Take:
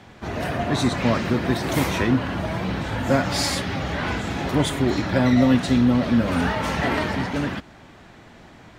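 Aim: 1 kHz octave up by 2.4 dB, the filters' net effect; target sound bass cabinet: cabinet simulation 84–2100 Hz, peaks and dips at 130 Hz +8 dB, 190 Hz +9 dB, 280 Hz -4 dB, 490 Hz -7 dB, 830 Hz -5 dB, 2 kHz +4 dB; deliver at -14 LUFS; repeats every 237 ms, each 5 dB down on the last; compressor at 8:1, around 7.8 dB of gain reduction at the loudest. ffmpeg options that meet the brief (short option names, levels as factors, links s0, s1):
-af "equalizer=f=1000:t=o:g=6,acompressor=threshold=0.0891:ratio=8,highpass=f=84:w=0.5412,highpass=f=84:w=1.3066,equalizer=f=130:t=q:w=4:g=8,equalizer=f=190:t=q:w=4:g=9,equalizer=f=280:t=q:w=4:g=-4,equalizer=f=490:t=q:w=4:g=-7,equalizer=f=830:t=q:w=4:g=-5,equalizer=f=2000:t=q:w=4:g=4,lowpass=f=2100:w=0.5412,lowpass=f=2100:w=1.3066,aecho=1:1:237|474|711|948|1185|1422|1659:0.562|0.315|0.176|0.0988|0.0553|0.031|0.0173,volume=2.99"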